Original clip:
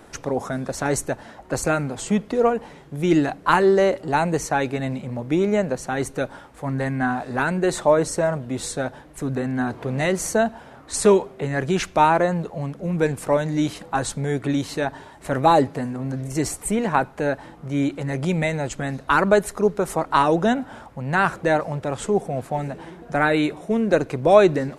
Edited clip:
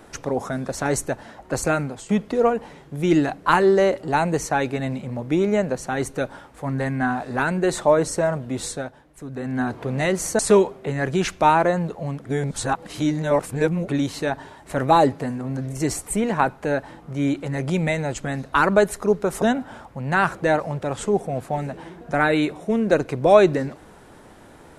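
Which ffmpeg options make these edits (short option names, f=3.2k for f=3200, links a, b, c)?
-filter_complex "[0:a]asplit=8[a][b][c][d][e][f][g][h];[a]atrim=end=2.09,asetpts=PTS-STARTPTS,afade=t=out:st=1.81:d=0.28:silence=0.237137[i];[b]atrim=start=2.09:end=8.92,asetpts=PTS-STARTPTS,afade=t=in:d=0.004:c=hsin:silence=0.237137,afade=t=out:st=6.58:d=0.25:silence=0.354813[j];[c]atrim=start=8.92:end=9.32,asetpts=PTS-STARTPTS,volume=-9dB[k];[d]atrim=start=9.32:end=10.392,asetpts=PTS-STARTPTS,afade=t=in:d=0.25:silence=0.354813[l];[e]atrim=start=10.938:end=12.802[m];[f]atrim=start=12.798:end=14.432,asetpts=PTS-STARTPTS,areverse[n];[g]atrim=start=14.428:end=19.972[o];[h]atrim=start=20.428[p];[i][j][k][l]concat=n=4:v=0:a=1[q];[q][m]acrossfade=d=0.004:c1=hsin:c2=hsin[r];[r][n]acrossfade=d=0.004:c1=hsin:c2=hsin[s];[s][o]acrossfade=d=0.004:c1=hsin:c2=hsin[t];[t][p]acrossfade=d=0.004:c1=hsin:c2=hsin"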